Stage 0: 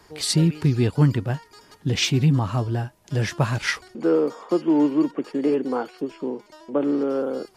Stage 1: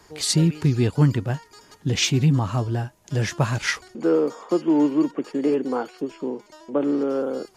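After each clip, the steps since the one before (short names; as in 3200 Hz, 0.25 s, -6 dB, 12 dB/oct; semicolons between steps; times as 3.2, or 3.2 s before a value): bell 6700 Hz +6 dB 0.28 oct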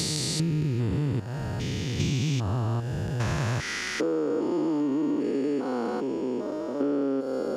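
stepped spectrum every 0.4 s; compressor, threshold -28 dBFS, peak gain reduction 9.5 dB; gain +4.5 dB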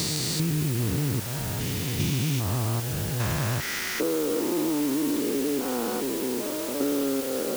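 requantised 6-bit, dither triangular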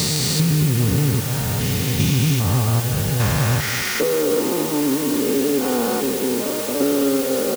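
notch comb 330 Hz; echo 0.216 s -12 dB; gain +8.5 dB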